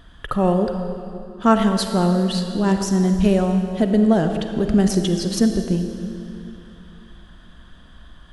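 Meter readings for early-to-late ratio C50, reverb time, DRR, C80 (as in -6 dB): 6.5 dB, 2.7 s, 6.0 dB, 7.0 dB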